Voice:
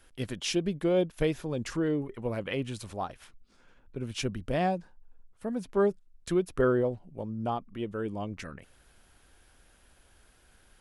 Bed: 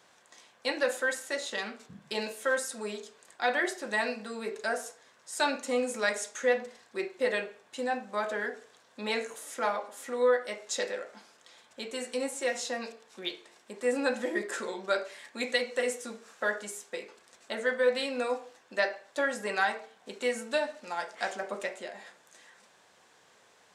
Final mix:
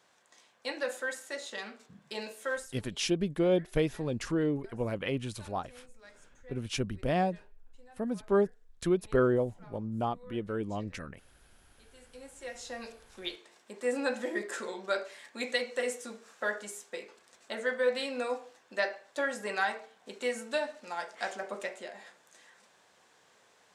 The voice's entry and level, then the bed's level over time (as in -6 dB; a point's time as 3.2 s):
2.55 s, -0.5 dB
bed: 2.55 s -5.5 dB
2.89 s -27 dB
11.71 s -27 dB
12.95 s -2.5 dB